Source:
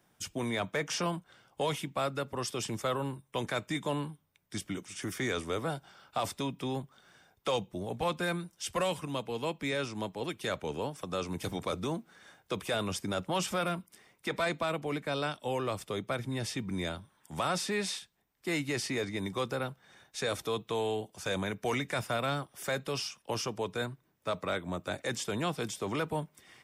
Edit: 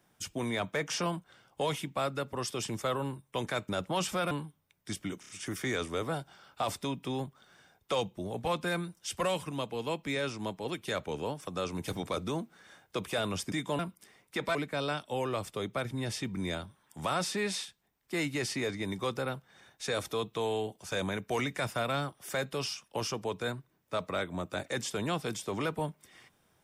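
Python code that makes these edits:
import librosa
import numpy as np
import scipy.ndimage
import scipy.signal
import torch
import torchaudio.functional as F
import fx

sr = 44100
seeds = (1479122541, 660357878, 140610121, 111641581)

y = fx.edit(x, sr, fx.swap(start_s=3.69, length_s=0.27, other_s=13.08, other_length_s=0.62),
    fx.stutter(start_s=4.85, slice_s=0.03, count=4),
    fx.cut(start_s=14.46, length_s=0.43), tone=tone)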